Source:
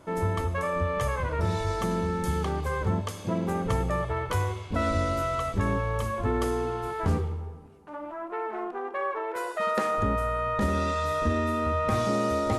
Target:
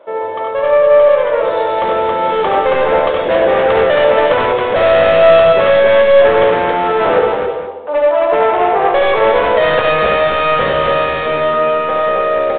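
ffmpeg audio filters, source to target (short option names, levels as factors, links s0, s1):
-af "dynaudnorm=f=350:g=11:m=4.22,highpass=f=540:t=q:w=4.9,aresample=11025,asoftclip=type=hard:threshold=0.158,aresample=44100,aecho=1:1:70|94|273|478:0.531|0.501|0.668|0.237,volume=1.68" -ar 8000 -c:a pcm_mulaw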